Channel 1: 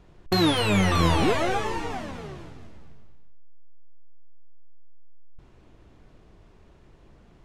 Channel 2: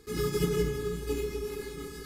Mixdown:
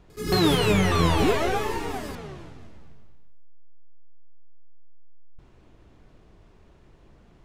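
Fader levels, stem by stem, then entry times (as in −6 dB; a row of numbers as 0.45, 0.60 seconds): −0.5, +2.5 decibels; 0.00, 0.10 seconds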